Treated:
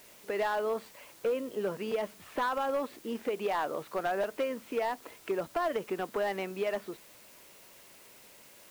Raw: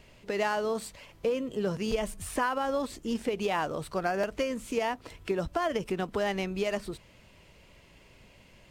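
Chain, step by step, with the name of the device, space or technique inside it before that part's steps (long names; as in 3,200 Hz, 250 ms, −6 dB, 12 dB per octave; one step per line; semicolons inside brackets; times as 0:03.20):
aircraft radio (band-pass filter 310–2,400 Hz; hard clipping −24.5 dBFS, distortion −16 dB; white noise bed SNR 22 dB)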